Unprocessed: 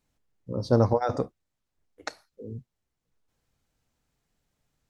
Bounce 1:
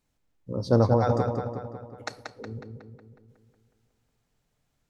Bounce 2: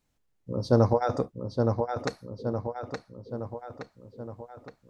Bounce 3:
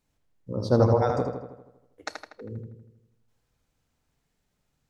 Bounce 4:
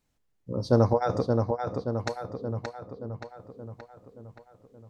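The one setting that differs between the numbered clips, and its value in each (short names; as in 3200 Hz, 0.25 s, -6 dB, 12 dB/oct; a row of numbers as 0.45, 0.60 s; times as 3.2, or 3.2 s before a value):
darkening echo, time: 183, 869, 80, 575 ms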